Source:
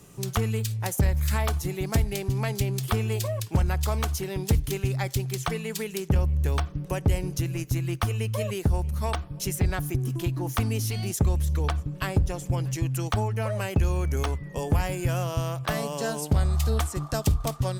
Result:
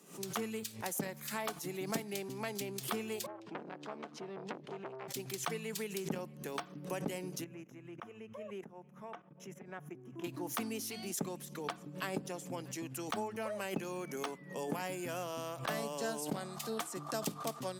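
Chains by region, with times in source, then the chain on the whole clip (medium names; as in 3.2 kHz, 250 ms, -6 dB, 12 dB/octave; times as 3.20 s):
3.26–5.08 s: high-pass 110 Hz 24 dB/octave + tape spacing loss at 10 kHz 31 dB + transformer saturation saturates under 1.7 kHz
7.44–10.24 s: boxcar filter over 10 samples + level held to a coarse grid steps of 17 dB + band-stop 290 Hz, Q 6.6
whole clip: steep high-pass 180 Hz 36 dB/octave; swell ahead of each attack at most 130 dB/s; trim -8 dB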